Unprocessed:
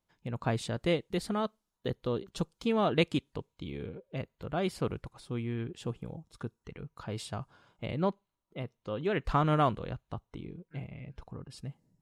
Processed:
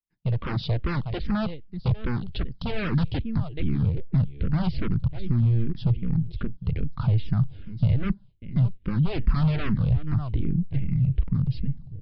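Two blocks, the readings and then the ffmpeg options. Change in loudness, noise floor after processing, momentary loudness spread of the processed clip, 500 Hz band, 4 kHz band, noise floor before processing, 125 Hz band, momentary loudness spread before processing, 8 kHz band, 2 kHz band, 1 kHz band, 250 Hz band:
+7.5 dB, -49 dBFS, 7 LU, -4.5 dB, +0.5 dB, -85 dBFS, +14.0 dB, 17 LU, under -20 dB, +2.0 dB, -4.0 dB, +7.0 dB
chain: -filter_complex "[0:a]aeval=exprs='if(lt(val(0),0),0.447*val(0),val(0))':c=same,aecho=1:1:593:0.0944,asplit=2[a][b];[b]aeval=exprs='0.158*sin(PI/2*8.91*val(0)/0.158)':c=same,volume=-9dB[c];[a][c]amix=inputs=2:normalize=0,asubboost=boost=5.5:cutoff=200,agate=range=-33dB:threshold=-43dB:ratio=3:detection=peak,acrossover=split=620|1800[d][e][f];[e]acrusher=bits=6:mix=0:aa=0.000001[g];[d][g][f]amix=inputs=3:normalize=0,aresample=11025,aresample=44100,bass=f=250:g=5,treble=f=4k:g=-6,acompressor=threshold=-17dB:ratio=2.5,asplit=2[h][i];[i]afreqshift=-2.5[j];[h][j]amix=inputs=2:normalize=1"

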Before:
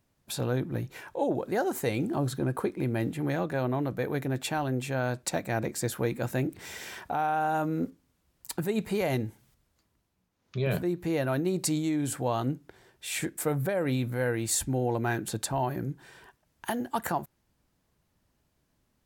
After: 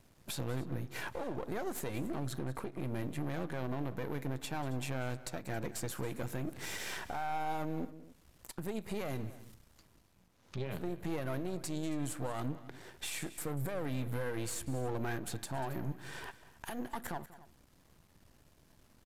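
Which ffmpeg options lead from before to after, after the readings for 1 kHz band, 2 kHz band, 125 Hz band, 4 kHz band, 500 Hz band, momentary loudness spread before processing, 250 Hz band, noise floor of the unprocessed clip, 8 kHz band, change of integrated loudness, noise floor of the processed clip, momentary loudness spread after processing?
-9.0 dB, -7.5 dB, -8.0 dB, -6.5 dB, -10.0 dB, 8 LU, -9.0 dB, -75 dBFS, -9.5 dB, -9.0 dB, -66 dBFS, 8 LU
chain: -filter_complex "[0:a]aeval=exprs='if(lt(val(0),0),0.251*val(0),val(0))':c=same,acompressor=threshold=-48dB:ratio=2,alimiter=level_in=15dB:limit=-24dB:level=0:latency=1:release=285,volume=-15dB,asplit=2[a][b];[b]aecho=0:1:191|273:0.133|0.106[c];[a][c]amix=inputs=2:normalize=0,aresample=32000,aresample=44100,volume=11.5dB"

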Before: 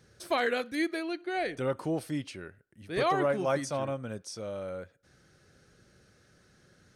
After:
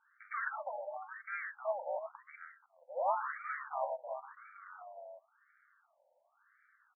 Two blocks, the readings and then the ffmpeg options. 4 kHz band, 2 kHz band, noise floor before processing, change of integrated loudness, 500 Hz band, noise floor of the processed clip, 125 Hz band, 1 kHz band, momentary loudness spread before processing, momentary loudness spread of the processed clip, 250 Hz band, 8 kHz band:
under -40 dB, -6.5 dB, -64 dBFS, -8.0 dB, -9.5 dB, -75 dBFS, under -40 dB, -4.0 dB, 13 LU, 17 LU, under -40 dB, under -35 dB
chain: -filter_complex "[0:a]bandreject=f=294.8:t=h:w=4,bandreject=f=589.6:t=h:w=4,bandreject=f=884.4:t=h:w=4,bandreject=f=1.1792k:t=h:w=4,bandreject=f=1.474k:t=h:w=4,bandreject=f=1.7688k:t=h:w=4,aeval=exprs='val(0)*sin(2*PI*110*n/s)':c=same,aexciter=amount=10.2:drive=2.1:freq=3.2k,asplit=2[a][b];[b]aeval=exprs='0.075*(abs(mod(val(0)/0.075+3,4)-2)-1)':c=same,volume=-3.5dB[c];[a][c]amix=inputs=2:normalize=0,bandreject=f=4k:w=5.2,asplit=2[d][e];[e]aecho=0:1:354:0.398[f];[d][f]amix=inputs=2:normalize=0,asoftclip=type=hard:threshold=-19.5dB,afftfilt=real='re*between(b*sr/1024,670*pow(1700/670,0.5+0.5*sin(2*PI*0.94*pts/sr))/1.41,670*pow(1700/670,0.5+0.5*sin(2*PI*0.94*pts/sr))*1.41)':imag='im*between(b*sr/1024,670*pow(1700/670,0.5+0.5*sin(2*PI*0.94*pts/sr))/1.41,670*pow(1700/670,0.5+0.5*sin(2*PI*0.94*pts/sr))*1.41)':win_size=1024:overlap=0.75,volume=-2dB"

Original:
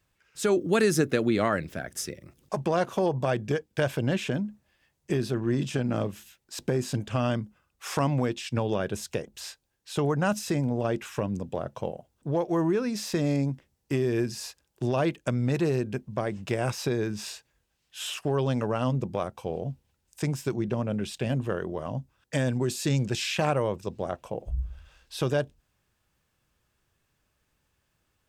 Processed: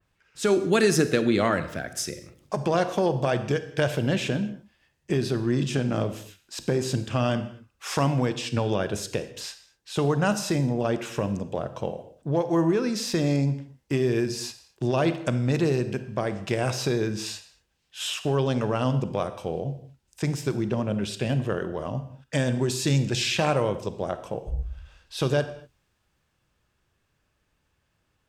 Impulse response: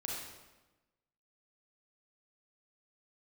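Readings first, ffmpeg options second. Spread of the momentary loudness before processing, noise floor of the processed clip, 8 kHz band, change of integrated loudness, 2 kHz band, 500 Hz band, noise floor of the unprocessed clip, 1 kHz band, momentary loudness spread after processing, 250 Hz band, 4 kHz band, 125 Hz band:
11 LU, -73 dBFS, +3.5 dB, +2.5 dB, +3.0 dB, +2.5 dB, -75 dBFS, +2.0 dB, 11 LU, +2.5 dB, +4.5 dB, +2.5 dB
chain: -filter_complex "[0:a]highshelf=f=8.5k:g=-10.5,asplit=2[a][b];[1:a]atrim=start_sample=2205,afade=t=out:st=0.33:d=0.01,atrim=end_sample=14994,asetrate=48510,aresample=44100[c];[b][c]afir=irnorm=-1:irlink=0,volume=-7.5dB[d];[a][d]amix=inputs=2:normalize=0,adynamicequalizer=threshold=0.00631:dfrequency=2900:dqfactor=0.7:tfrequency=2900:tqfactor=0.7:attack=5:release=100:ratio=0.375:range=3:mode=boostabove:tftype=highshelf"

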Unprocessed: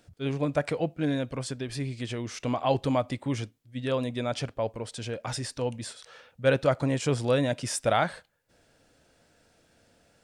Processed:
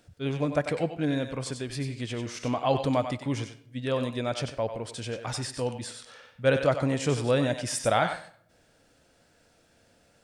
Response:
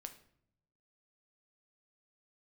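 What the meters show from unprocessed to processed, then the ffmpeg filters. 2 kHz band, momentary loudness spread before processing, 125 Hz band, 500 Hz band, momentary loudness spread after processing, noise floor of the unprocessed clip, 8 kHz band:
+1.0 dB, 10 LU, 0.0 dB, +0.5 dB, 10 LU, -65 dBFS, +1.0 dB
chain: -filter_complex "[0:a]asplit=2[a][b];[1:a]atrim=start_sample=2205,lowshelf=f=350:g=-12,adelay=94[c];[b][c]afir=irnorm=-1:irlink=0,volume=-1.5dB[d];[a][d]amix=inputs=2:normalize=0"

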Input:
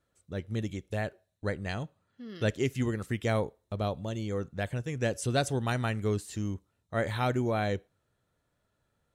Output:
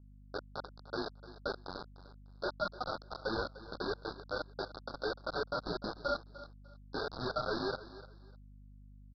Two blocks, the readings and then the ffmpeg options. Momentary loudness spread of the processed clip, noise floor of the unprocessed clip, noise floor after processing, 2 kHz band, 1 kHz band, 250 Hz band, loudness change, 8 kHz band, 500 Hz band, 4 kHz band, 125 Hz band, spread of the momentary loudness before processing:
20 LU, -78 dBFS, -55 dBFS, -4.5 dB, -3.5 dB, -11.0 dB, -7.0 dB, under -20 dB, -6.0 dB, -1.0 dB, -18.0 dB, 9 LU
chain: -filter_complex "[0:a]acrossover=split=350 2300:gain=0.1 1 0.112[a][b][c];[a][b][c]amix=inputs=3:normalize=0,bandreject=f=60:t=h:w=6,bandreject=f=120:t=h:w=6,bandreject=f=180:t=h:w=6,bandreject=f=240:t=h:w=6,bandreject=f=300:t=h:w=6,bandreject=f=360:t=h:w=6,aecho=1:1:4.9:0.31,adynamicequalizer=threshold=0.00224:dfrequency=2500:dqfactor=1.3:tfrequency=2500:tqfactor=1.3:attack=5:release=100:ratio=0.375:range=3.5:mode=cutabove:tftype=bell,aeval=exprs='val(0)*sin(2*PI*1000*n/s)':c=same,asoftclip=type=tanh:threshold=-36dB,flanger=delay=0.6:depth=7.6:regen=-13:speed=1.5:shape=triangular,acrusher=bits=6:mix=0:aa=0.000001,aeval=exprs='val(0)+0.000562*(sin(2*PI*50*n/s)+sin(2*PI*2*50*n/s)/2+sin(2*PI*3*50*n/s)/3+sin(2*PI*4*50*n/s)/4+sin(2*PI*5*50*n/s)/5)':c=same,asuperstop=centerf=2400:order=12:qfactor=1,aecho=1:1:299|598:0.158|0.038,aresample=11025,aresample=44100,volume=10dB"

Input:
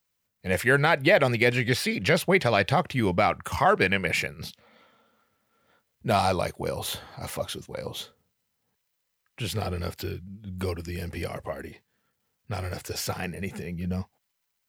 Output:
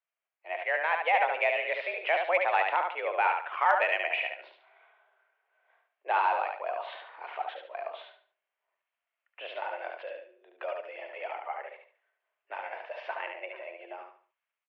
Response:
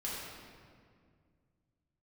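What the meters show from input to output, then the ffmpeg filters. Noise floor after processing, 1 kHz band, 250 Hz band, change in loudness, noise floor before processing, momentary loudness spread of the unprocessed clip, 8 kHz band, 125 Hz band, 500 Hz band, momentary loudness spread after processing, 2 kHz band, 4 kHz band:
under -85 dBFS, 0.0 dB, under -25 dB, -4.0 dB, -78 dBFS, 16 LU, under -35 dB, under -40 dB, -6.5 dB, 18 LU, -3.5 dB, -10.0 dB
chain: -af "highpass=f=340:t=q:w=0.5412,highpass=f=340:t=q:w=1.307,lowpass=f=2.7k:t=q:w=0.5176,lowpass=f=2.7k:t=q:w=0.7071,lowpass=f=2.7k:t=q:w=1.932,afreqshift=170,dynaudnorm=f=690:g=3:m=6dB,aecho=1:1:72|144|216|288:0.596|0.185|0.0572|0.0177,aeval=exprs='0.794*(cos(1*acos(clip(val(0)/0.794,-1,1)))-cos(1*PI/2))+0.0398*(cos(3*acos(clip(val(0)/0.794,-1,1)))-cos(3*PI/2))+0.0158*(cos(5*acos(clip(val(0)/0.794,-1,1)))-cos(5*PI/2))':c=same,volume=-8.5dB"

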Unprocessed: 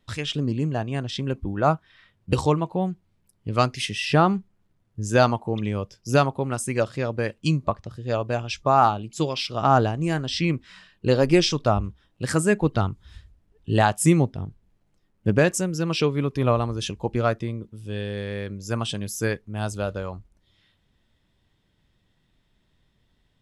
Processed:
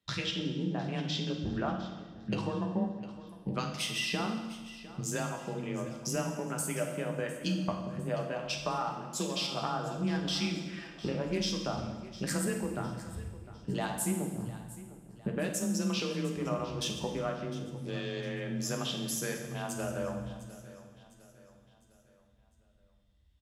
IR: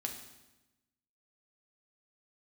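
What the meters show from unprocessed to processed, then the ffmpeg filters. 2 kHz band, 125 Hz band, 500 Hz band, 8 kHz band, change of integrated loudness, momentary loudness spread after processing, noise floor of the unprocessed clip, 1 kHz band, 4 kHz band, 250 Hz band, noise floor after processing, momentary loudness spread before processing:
-9.5 dB, -12.0 dB, -12.0 dB, -4.0 dB, -10.5 dB, 10 LU, -68 dBFS, -14.0 dB, -5.5 dB, -8.5 dB, -65 dBFS, 12 LU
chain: -filter_complex "[0:a]afreqshift=25,highshelf=f=3k:g=8,acompressor=threshold=-34dB:ratio=6,afwtdn=0.00398,aecho=1:1:705|1410|2115|2820:0.15|0.0673|0.0303|0.0136[a];[1:a]atrim=start_sample=2205,asetrate=35721,aresample=44100[b];[a][b]afir=irnorm=-1:irlink=0,volume=1.5dB"

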